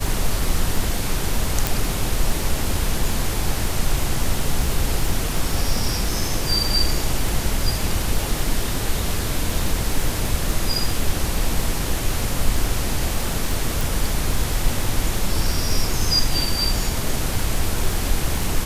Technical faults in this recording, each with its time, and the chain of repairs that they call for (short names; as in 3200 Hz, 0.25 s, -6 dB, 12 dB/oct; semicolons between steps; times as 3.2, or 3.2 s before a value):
crackle 34/s -24 dBFS
1.67 pop
13.81 pop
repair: de-click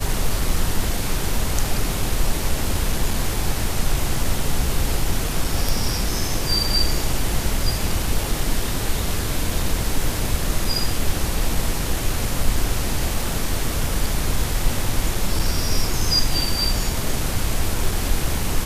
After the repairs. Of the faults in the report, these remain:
1.67 pop